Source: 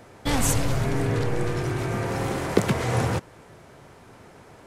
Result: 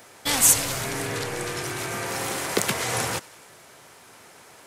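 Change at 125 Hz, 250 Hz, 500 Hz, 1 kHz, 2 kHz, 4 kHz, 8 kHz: -10.5 dB, -7.0 dB, -4.0 dB, -0.5 dB, +3.0 dB, +7.0 dB, +10.5 dB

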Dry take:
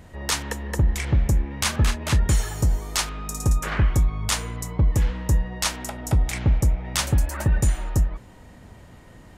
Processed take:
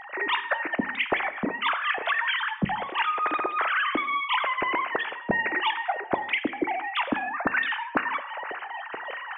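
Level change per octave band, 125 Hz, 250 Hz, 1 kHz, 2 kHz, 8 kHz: -21.5 dB, -2.0 dB, +8.5 dB, +8.5 dB, under -40 dB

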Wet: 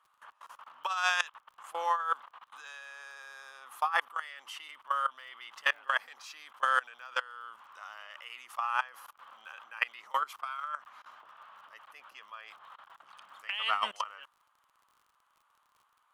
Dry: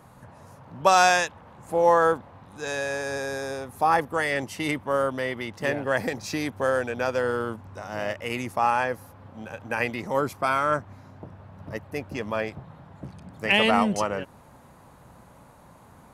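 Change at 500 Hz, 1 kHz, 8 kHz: -22.5 dB, -8.5 dB, -13.5 dB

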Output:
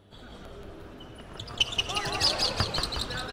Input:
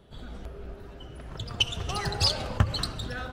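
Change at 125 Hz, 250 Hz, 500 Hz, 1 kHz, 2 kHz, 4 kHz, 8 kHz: -7.0 dB, -2.0 dB, +0.5 dB, +1.5 dB, +2.5 dB, +2.0 dB, +2.0 dB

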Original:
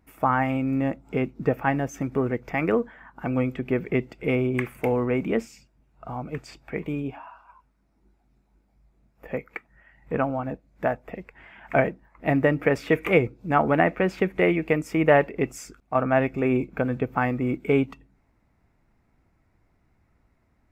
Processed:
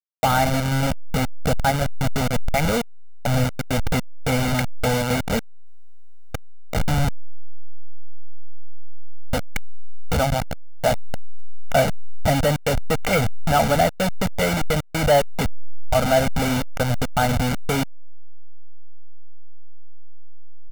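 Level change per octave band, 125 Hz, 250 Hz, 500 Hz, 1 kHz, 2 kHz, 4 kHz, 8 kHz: +6.5 dB, -0.5 dB, +1.0 dB, +4.5 dB, +2.0 dB, +16.0 dB, no reading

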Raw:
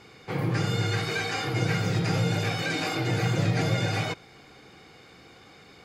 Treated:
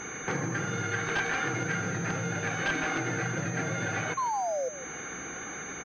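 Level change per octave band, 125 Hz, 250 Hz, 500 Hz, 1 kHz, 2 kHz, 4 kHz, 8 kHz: -9.0 dB, -4.5 dB, -2.0 dB, +1.5 dB, +1.5 dB, -8.5 dB, +6.0 dB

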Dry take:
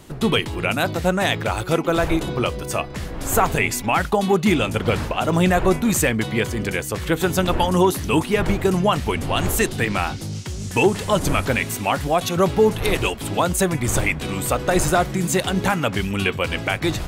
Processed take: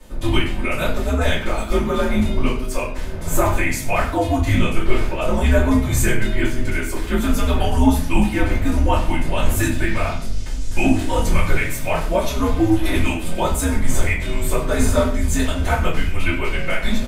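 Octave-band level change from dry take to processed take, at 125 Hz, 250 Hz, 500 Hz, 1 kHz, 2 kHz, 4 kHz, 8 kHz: +2.0 dB, +1.0 dB, -2.5 dB, -2.5 dB, -0.5 dB, -3.0 dB, -2.0 dB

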